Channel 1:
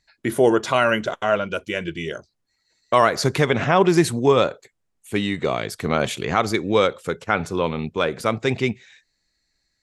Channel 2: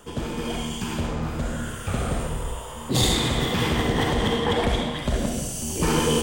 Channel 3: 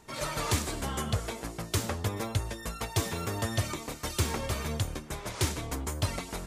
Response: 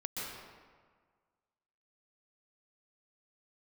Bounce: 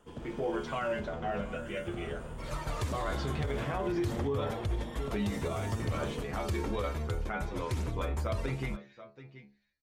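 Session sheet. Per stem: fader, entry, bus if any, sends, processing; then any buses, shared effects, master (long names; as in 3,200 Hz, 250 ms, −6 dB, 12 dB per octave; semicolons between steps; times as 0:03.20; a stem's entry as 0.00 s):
−6.5 dB, 0.00 s, no send, echo send −17 dB, Butterworth low-pass 6,100 Hz; automatic gain control gain up to 8.5 dB; stiff-string resonator 68 Hz, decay 0.39 s, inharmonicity 0.002
−12.0 dB, 0.00 s, no send, no echo send, downward compressor, threshold −25 dBFS, peak gain reduction 8.5 dB
−5.0 dB, 2.30 s, no send, no echo send, low-shelf EQ 86 Hz +11 dB; phase shifter 0.54 Hz, delay 3.1 ms, feedback 33%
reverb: not used
echo: single-tap delay 728 ms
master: high-shelf EQ 3,100 Hz −9.5 dB; brickwall limiter −24 dBFS, peak gain reduction 11 dB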